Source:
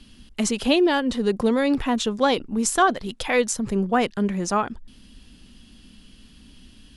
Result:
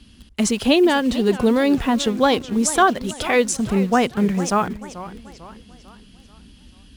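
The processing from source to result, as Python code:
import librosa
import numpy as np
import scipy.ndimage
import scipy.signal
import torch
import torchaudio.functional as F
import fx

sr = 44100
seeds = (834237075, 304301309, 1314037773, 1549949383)

p1 = scipy.signal.sosfilt(scipy.signal.butter(2, 47.0, 'highpass', fs=sr, output='sos'), x)
p2 = fx.low_shelf(p1, sr, hz=100.0, db=8.5)
p3 = fx.quant_dither(p2, sr, seeds[0], bits=6, dither='none')
p4 = p2 + (p3 * librosa.db_to_amplitude(-8.5))
y = fx.echo_warbled(p4, sr, ms=442, feedback_pct=44, rate_hz=2.8, cents=211, wet_db=-15.0)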